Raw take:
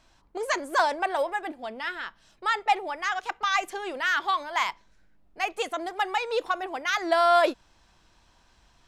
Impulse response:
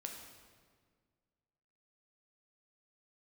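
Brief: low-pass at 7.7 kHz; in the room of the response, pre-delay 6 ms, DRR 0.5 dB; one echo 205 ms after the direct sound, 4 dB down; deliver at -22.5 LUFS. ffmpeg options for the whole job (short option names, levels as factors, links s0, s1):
-filter_complex "[0:a]lowpass=7700,aecho=1:1:205:0.631,asplit=2[s0][s1];[1:a]atrim=start_sample=2205,adelay=6[s2];[s1][s2]afir=irnorm=-1:irlink=0,volume=1.26[s3];[s0][s3]amix=inputs=2:normalize=0"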